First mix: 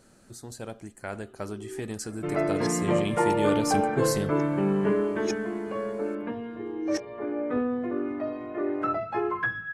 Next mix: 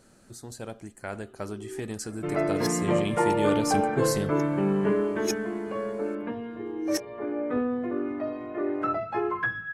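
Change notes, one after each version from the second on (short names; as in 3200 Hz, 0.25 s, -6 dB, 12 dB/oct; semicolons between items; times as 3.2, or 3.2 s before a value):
first sound: remove air absorption 92 m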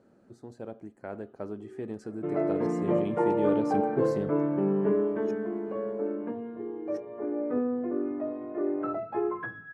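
first sound -8.5 dB; master: add band-pass 370 Hz, Q 0.7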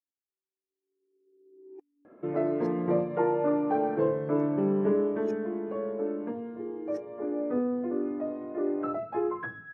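speech: muted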